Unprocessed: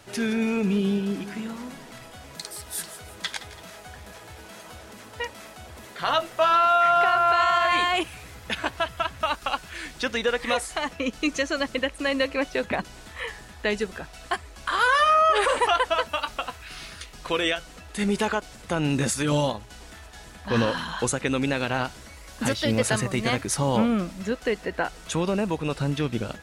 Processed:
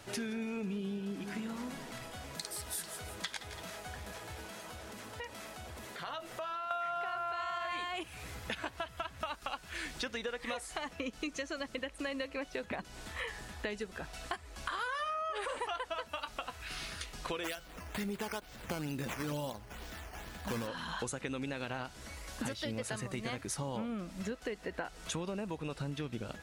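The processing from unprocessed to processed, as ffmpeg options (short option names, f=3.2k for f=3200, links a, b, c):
-filter_complex "[0:a]asettb=1/sr,asplit=3[a][b][c];[a]atrim=end=4.464[d];[b]atrim=start=4.46:end=6.71,asetpts=PTS-STARTPTS,afade=t=in:d=0.004:c=qsin,afade=t=out:st=2.246:d=0.004:c=qsin,acompressor=threshold=-41dB:ratio=2.5:attack=3.2:release=140:knee=1:detection=peak[e];[c]atrim=start=6.706[f];[d][e]acrossfade=d=0.004:c1=hsin:c2=qsin[g];[g][f]acrossfade=d=0.004:c1=qsin:c2=hsin,asplit=3[h][i][j];[h]afade=t=out:st=17.43:d=0.02[k];[i]acrusher=samples=8:mix=1:aa=0.000001:lfo=1:lforange=8:lforate=2.2,afade=t=in:st=17.43:d=0.02,afade=t=out:st=20.66:d=0.02[l];[j]afade=t=in:st=20.66:d=0.02[m];[k][l][m]amix=inputs=3:normalize=0,acompressor=threshold=-34dB:ratio=6,volume=-2dB"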